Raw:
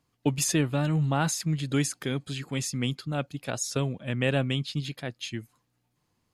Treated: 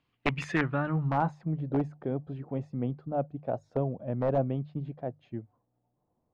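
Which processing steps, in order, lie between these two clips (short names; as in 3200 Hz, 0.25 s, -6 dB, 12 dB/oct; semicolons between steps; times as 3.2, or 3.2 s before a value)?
wrapped overs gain 15 dB; notches 50/100/150 Hz; low-pass sweep 3000 Hz -> 690 Hz, 0.07–1.51; gain -3 dB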